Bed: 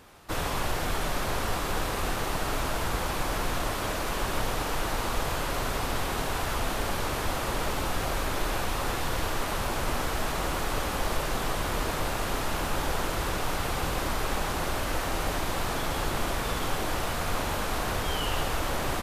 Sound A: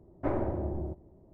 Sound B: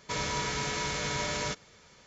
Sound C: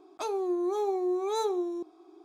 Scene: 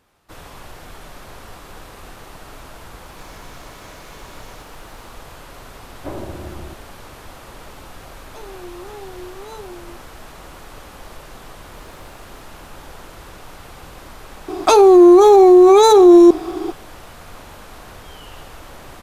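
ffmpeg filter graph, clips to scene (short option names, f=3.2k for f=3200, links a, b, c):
-filter_complex "[1:a]asplit=2[a][b];[3:a]asplit=2[c][d];[0:a]volume=-9.5dB[e];[2:a]aeval=exprs='val(0)+0.5*0.01*sgn(val(0))':c=same[f];[b]acrusher=bits=3:dc=4:mix=0:aa=0.000001[g];[d]alimiter=level_in=29.5dB:limit=-1dB:release=50:level=0:latency=1[h];[f]atrim=end=2.06,asetpts=PTS-STARTPTS,volume=-16dB,afade=t=in:d=0.004:c=hsin,afade=t=out:st=2.056:d=0.004:c=hsin,adelay=3080[i];[a]atrim=end=1.33,asetpts=PTS-STARTPTS,afade=t=in:d=0.004:c=hsin,afade=t=out:st=1.326:d=0.004:c=hsin,adelay=256221S[j];[c]atrim=end=2.24,asetpts=PTS-STARTPTS,volume=-7.5dB,afade=t=in:d=0.004:c=hsin,afade=t=out:st=2.236:d=0.004:c=hsin,adelay=8140[k];[g]atrim=end=1.33,asetpts=PTS-STARTPTS,volume=-17dB,afade=t=in:d=0.004:c=hsin,afade=t=out:st=1.326:d=0.004:c=hsin,adelay=11520[l];[h]atrim=end=2.24,asetpts=PTS-STARTPTS,volume=-1dB,afade=t=in:d=0.004:c=hsin,afade=t=out:st=2.236:d=0.004:c=hsin,adelay=14480[m];[e][i][j][k][l][m]amix=inputs=6:normalize=0"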